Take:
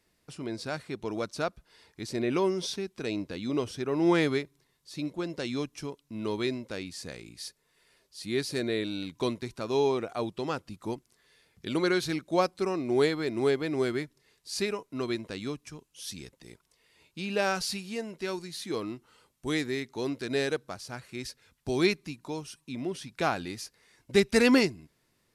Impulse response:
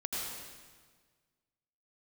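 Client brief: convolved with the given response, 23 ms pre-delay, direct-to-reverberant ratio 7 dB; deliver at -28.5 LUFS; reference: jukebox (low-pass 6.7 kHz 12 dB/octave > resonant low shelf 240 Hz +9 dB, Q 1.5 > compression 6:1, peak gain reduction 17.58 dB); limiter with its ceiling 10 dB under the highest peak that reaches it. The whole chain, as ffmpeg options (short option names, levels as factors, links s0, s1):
-filter_complex "[0:a]alimiter=limit=0.0841:level=0:latency=1,asplit=2[s0][s1];[1:a]atrim=start_sample=2205,adelay=23[s2];[s1][s2]afir=irnorm=-1:irlink=0,volume=0.282[s3];[s0][s3]amix=inputs=2:normalize=0,lowpass=6700,lowshelf=f=240:t=q:w=1.5:g=9,acompressor=threshold=0.00891:ratio=6,volume=6.31"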